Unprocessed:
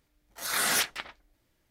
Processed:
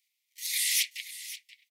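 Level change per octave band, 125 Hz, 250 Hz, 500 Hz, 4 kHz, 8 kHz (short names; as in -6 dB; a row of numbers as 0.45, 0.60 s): under -40 dB, under -40 dB, under -40 dB, +1.0 dB, +1.0 dB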